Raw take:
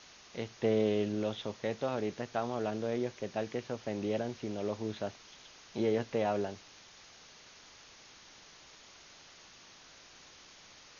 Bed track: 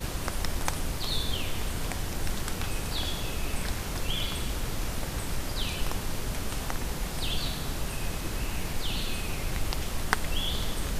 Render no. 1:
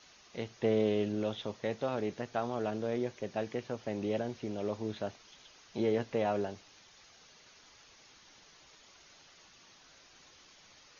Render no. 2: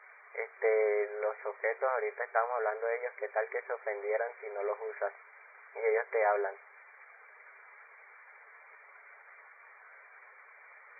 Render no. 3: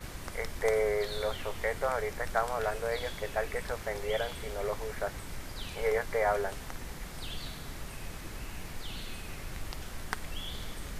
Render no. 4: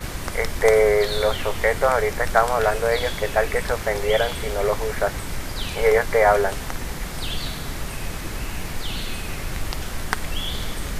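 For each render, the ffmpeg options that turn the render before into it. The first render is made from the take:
ffmpeg -i in.wav -af "afftdn=noise_reduction=6:noise_floor=-56" out.wav
ffmpeg -i in.wav -af "afftfilt=real='re*between(b*sr/4096,390,2400)':imag='im*between(b*sr/4096,390,2400)':win_size=4096:overlap=0.75,equalizer=frequency=1800:width=0.64:gain=11.5" out.wav
ffmpeg -i in.wav -i bed.wav -filter_complex "[1:a]volume=-9.5dB[link_01];[0:a][link_01]amix=inputs=2:normalize=0" out.wav
ffmpeg -i in.wav -af "volume=12dB,alimiter=limit=-1dB:level=0:latency=1" out.wav

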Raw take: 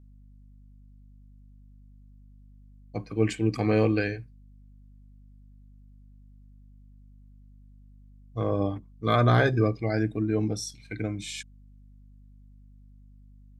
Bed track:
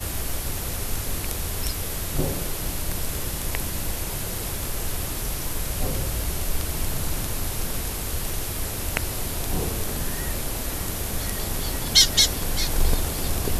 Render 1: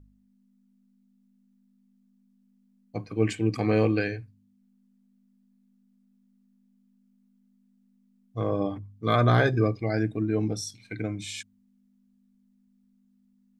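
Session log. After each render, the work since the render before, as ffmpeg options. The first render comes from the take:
ffmpeg -i in.wav -af "bandreject=frequency=50:width_type=h:width=4,bandreject=frequency=100:width_type=h:width=4,bandreject=frequency=150:width_type=h:width=4" out.wav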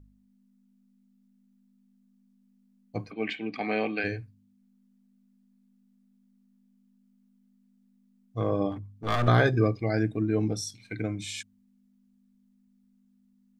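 ffmpeg -i in.wav -filter_complex "[0:a]asplit=3[link_01][link_02][link_03];[link_01]afade=type=out:start_time=3.1:duration=0.02[link_04];[link_02]highpass=frequency=230:width=0.5412,highpass=frequency=230:width=1.3066,equalizer=frequency=330:width_type=q:width=4:gain=-9,equalizer=frequency=490:width_type=q:width=4:gain=-9,equalizer=frequency=730:width_type=q:width=4:gain=4,equalizer=frequency=1100:width_type=q:width=4:gain=-6,equalizer=frequency=2200:width_type=q:width=4:gain=5,equalizer=frequency=3500:width_type=q:width=4:gain=5,lowpass=frequency=4000:width=0.5412,lowpass=frequency=4000:width=1.3066,afade=type=in:start_time=3.1:duration=0.02,afade=type=out:start_time=4.03:duration=0.02[link_05];[link_03]afade=type=in:start_time=4.03:duration=0.02[link_06];[link_04][link_05][link_06]amix=inputs=3:normalize=0,asettb=1/sr,asplit=3[link_07][link_08][link_09];[link_07]atrim=end=8.724[link_10];[link_08]atrim=start=8.72:end=9.28,asetpts=PTS-STARTPTS,afade=type=in:duration=0.004:curve=qsin,afade=type=out:start_time=0.556:duration=0.004:curve=qsin,aeval=exprs='clip(val(0),-1,0.0237)':channel_layout=same[link_11];[link_09]atrim=start=9.276[link_12];[link_10][link_11]acrossfade=duration=0.004:curve1=hsin:curve2=qsin[link_13];[link_13][link_12]acrossfade=duration=0.004:curve1=qsin:curve2=hsin" out.wav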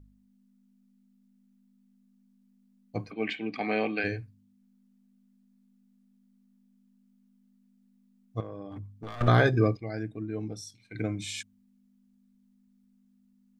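ffmpeg -i in.wav -filter_complex "[0:a]asettb=1/sr,asplit=3[link_01][link_02][link_03];[link_01]atrim=end=8.404[link_04];[link_02]atrim=start=8.4:end=9.21,asetpts=PTS-STARTPTS,afade=type=in:duration=0.004:curve=qsin,afade=type=out:start_time=0.806:duration=0.004:curve=qsin,acompressor=threshold=-35dB:ratio=16:attack=3.2:release=140:knee=1:detection=peak[link_05];[link_03]atrim=start=9.206[link_06];[link_04][link_05]acrossfade=duration=0.004:curve1=hsin:curve2=qsin[link_07];[link_07][link_06]acrossfade=duration=0.004:curve1=qsin:curve2=hsin,asplit=3[link_08][link_09][link_10];[link_08]atrim=end=9.772[link_11];[link_09]atrim=start=9.768:end=10.952,asetpts=PTS-STARTPTS,volume=-8.5dB[link_12];[link_10]atrim=start=10.948[link_13];[link_11][link_12]acrossfade=duration=0.004:curve1=hsin:curve2=hsin[link_14];[link_14][link_13]acrossfade=duration=0.004:curve1=hsin:curve2=hsin" out.wav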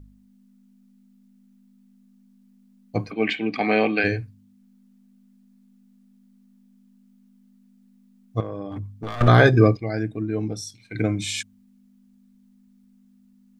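ffmpeg -i in.wav -af "volume=8.5dB,alimiter=limit=-3dB:level=0:latency=1" out.wav

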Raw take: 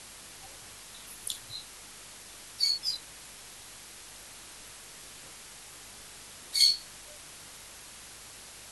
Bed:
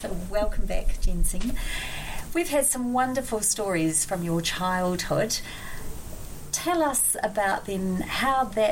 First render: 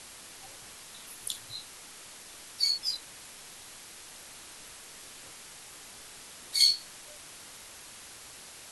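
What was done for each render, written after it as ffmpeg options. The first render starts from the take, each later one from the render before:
ffmpeg -i in.wav -af "bandreject=frequency=50:width_type=h:width=4,bandreject=frequency=100:width_type=h:width=4,bandreject=frequency=150:width_type=h:width=4,bandreject=frequency=200:width_type=h:width=4" out.wav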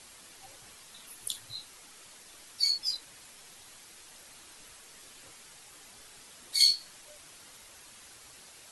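ffmpeg -i in.wav -af "afftdn=noise_reduction=6:noise_floor=-49" out.wav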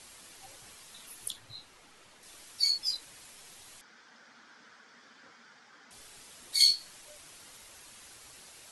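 ffmpeg -i in.wav -filter_complex "[0:a]asettb=1/sr,asplit=3[link_01][link_02][link_03];[link_01]atrim=end=1.304[link_04];[link_02]atrim=start=1.3:end=2.23,asetpts=PTS-STARTPTS,afade=type=in:duration=0.004:curve=qsin,afade=type=out:start_time=0.926:duration=0.004:curve=qsin,lowpass=frequency=2500:poles=1[link_05];[link_03]atrim=start=2.226[link_06];[link_04][link_05]acrossfade=duration=0.004:curve1=hsin:curve2=qsin[link_07];[link_07][link_06]acrossfade=duration=0.004:curve1=qsin:curve2=hsin,asettb=1/sr,asplit=3[link_08][link_09][link_10];[link_08]atrim=end=3.814[link_11];[link_09]atrim=start=3.81:end=5.91,asetpts=PTS-STARTPTS,afade=type=in:duration=0.004:curve=qsin,afade=type=out:start_time=2.096:duration=0.004:curve=qsin,highpass=220,equalizer=frequency=230:width_type=q:width=4:gain=9,equalizer=frequency=360:width_type=q:width=4:gain=-7,equalizer=frequency=620:width_type=q:width=4:gain=-4,equalizer=frequency=1500:width_type=q:width=4:gain=8,equalizer=frequency=2700:width_type=q:width=4:gain=-10,equalizer=frequency=4000:width_type=q:width=4:gain=-8,lowpass=frequency=4800:width=0.5412,lowpass=frequency=4800:width=1.3066[link_12];[link_10]atrim=start=5.906[link_13];[link_11][link_12]acrossfade=duration=0.004:curve1=hsin:curve2=qsin[link_14];[link_14][link_13]acrossfade=duration=0.004:curve1=qsin:curve2=hsin" out.wav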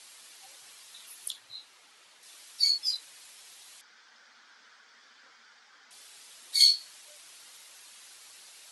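ffmpeg -i in.wav -af "highpass=frequency=990:poles=1,equalizer=frequency=4000:width_type=o:width=0.96:gain=3" out.wav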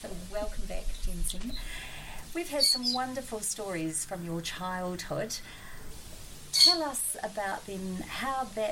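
ffmpeg -i in.wav -i bed.wav -filter_complex "[1:a]volume=-9dB[link_01];[0:a][link_01]amix=inputs=2:normalize=0" out.wav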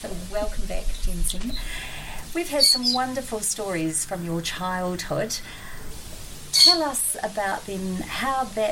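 ffmpeg -i in.wav -af "volume=7.5dB,alimiter=limit=-3dB:level=0:latency=1" out.wav

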